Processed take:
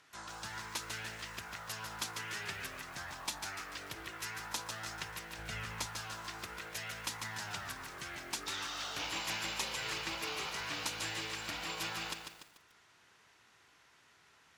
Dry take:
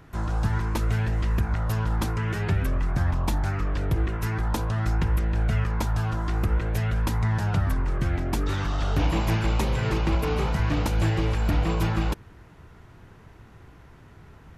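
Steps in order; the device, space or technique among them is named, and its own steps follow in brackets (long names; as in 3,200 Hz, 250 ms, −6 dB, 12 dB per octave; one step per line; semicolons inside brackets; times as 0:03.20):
piezo pickup straight into a mixer (low-pass filter 6,400 Hz 12 dB per octave; first difference)
0:05.38–0:05.86: low-shelf EQ 220 Hz +9 dB
feedback echo at a low word length 146 ms, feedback 55%, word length 10 bits, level −6 dB
level +5.5 dB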